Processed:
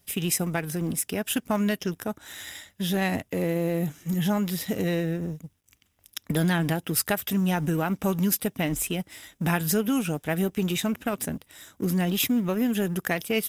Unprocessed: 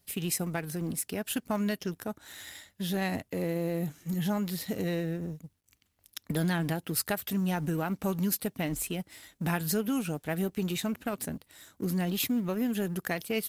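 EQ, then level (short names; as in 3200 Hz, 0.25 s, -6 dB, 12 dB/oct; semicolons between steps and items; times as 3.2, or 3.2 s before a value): bell 3500 Hz +2 dB 1.6 oct; notch 4300 Hz, Q 6; +5.0 dB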